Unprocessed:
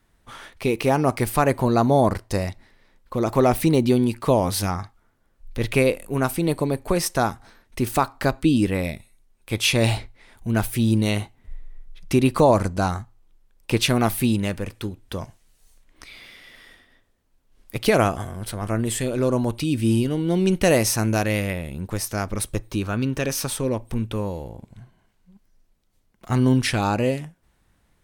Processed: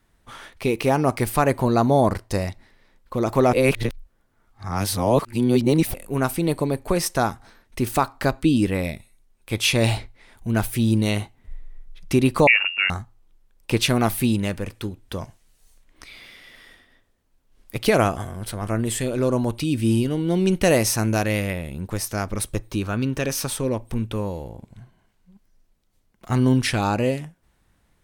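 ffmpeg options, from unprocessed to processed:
-filter_complex "[0:a]asettb=1/sr,asplit=3[a][b][c];[a]atrim=end=12.474[d];[b]atrim=start=12.47:end=12.9,asetpts=PTS-STARTPTS,afade=t=in:d=0.004:c=qsin,afade=t=out:st=0.426:d=0.004:c=qsin,lowpass=f=2.5k:t=q:w=0.5098,lowpass=f=2.5k:t=q:w=0.6013,lowpass=f=2.5k:t=q:w=0.9,lowpass=f=2.5k:t=q:w=2.563,afreqshift=-2900[e];[c]atrim=start=12.896[f];[d][e]acrossfade=d=0.004:c1=hsin:c2=qsin[g];[g][f]acrossfade=d=0.004:c1=qsin:c2=hsin,asplit=3[h][i][j];[h]atrim=end=3.532[k];[i]atrim=start=3.528:end=5.942,asetpts=PTS-STARTPTS,areverse[l];[j]atrim=start=5.938[m];[k][l]acrossfade=d=0.004:c1=hsin:c2=hsin[n];[n][m]acrossfade=d=0.004:c1=hsin:c2=hsin"

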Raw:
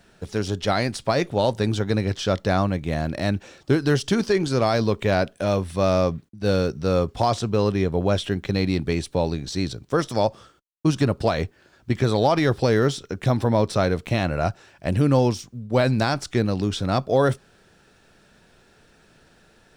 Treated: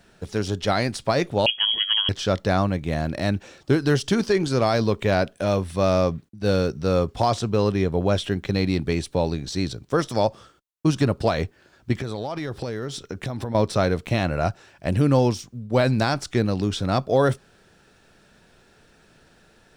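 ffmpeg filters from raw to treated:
-filter_complex "[0:a]asettb=1/sr,asplit=3[a][b][c];[a]atrim=end=1.464[d];[b]atrim=start=1.46:end=2.09,asetpts=PTS-STARTPTS,afade=t=in:d=0.004:c=qsin,afade=t=out:st=0.626:d=0.004:c=qsin,lowpass=f=2.9k:t=q:w=0.5098,lowpass=f=2.9k:t=q:w=0.6013,lowpass=f=2.9k:t=q:w=0.9,lowpass=f=2.9k:t=q:w=2.563,afreqshift=-3400[e];[c]atrim=start=2.086[f];[d][e]acrossfade=d=0.004:c1=hsin:c2=qsin[g];[g][f]acrossfade=d=0.004:c1=qsin:c2=hsin,asettb=1/sr,asplit=3[h][i][j];[h]atrim=end=11.954[k];[i]atrim=start=11.95:end=13.55,asetpts=PTS-STARTPTS,afade=t=in:d=0.004:c=qsin,afade=t=out:st=1.596:d=0.004:c=qsin,acompressor=threshold=-25dB:ratio=12:attack=3.2:release=140:knee=1:detection=peak[l];[j]atrim=start=13.546[m];[k][l]acrossfade=d=0.004:c1=hsin:c2=qsin[n];[n][m]acrossfade=d=0.004:c1=qsin:c2=hsin"

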